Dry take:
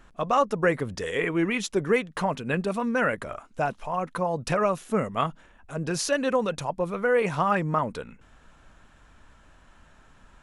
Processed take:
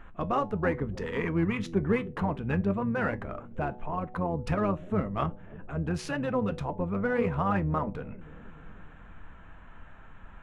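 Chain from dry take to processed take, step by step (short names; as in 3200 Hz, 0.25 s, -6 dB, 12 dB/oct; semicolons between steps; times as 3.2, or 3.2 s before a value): Wiener smoothing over 9 samples; tone controls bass +7 dB, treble -12 dB; notch 570 Hz, Q 17; de-hum 123 Hz, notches 7; in parallel at -2 dB: compressor, threshold -36 dBFS, peak gain reduction 18 dB; on the sum: resonator 99 Hz, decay 0.19 s, harmonics all, mix 50%; harmoniser -12 st -7 dB; analogue delay 0.302 s, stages 1024, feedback 62%, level -18.5 dB; mismatched tape noise reduction encoder only; gain -3 dB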